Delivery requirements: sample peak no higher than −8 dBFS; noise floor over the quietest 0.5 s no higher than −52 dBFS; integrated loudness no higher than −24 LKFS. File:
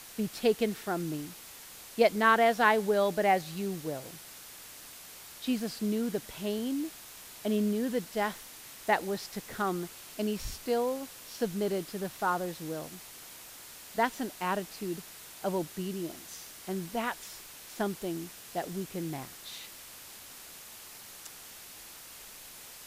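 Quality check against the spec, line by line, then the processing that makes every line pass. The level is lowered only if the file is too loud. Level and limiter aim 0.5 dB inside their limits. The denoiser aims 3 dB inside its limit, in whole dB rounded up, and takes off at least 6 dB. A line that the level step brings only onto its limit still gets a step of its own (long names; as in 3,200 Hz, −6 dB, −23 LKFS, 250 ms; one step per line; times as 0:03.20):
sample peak −9.5 dBFS: in spec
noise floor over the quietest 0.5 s −49 dBFS: out of spec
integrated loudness −32.0 LKFS: in spec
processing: broadband denoise 6 dB, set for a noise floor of −49 dBFS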